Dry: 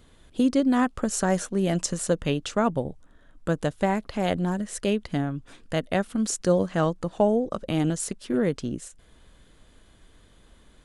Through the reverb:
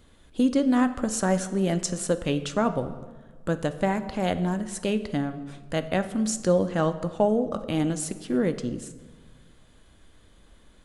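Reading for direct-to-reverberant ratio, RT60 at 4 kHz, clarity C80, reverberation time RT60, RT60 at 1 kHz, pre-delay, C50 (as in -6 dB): 10.0 dB, 1.0 s, 14.5 dB, 1.5 s, 1.4 s, 4 ms, 13.0 dB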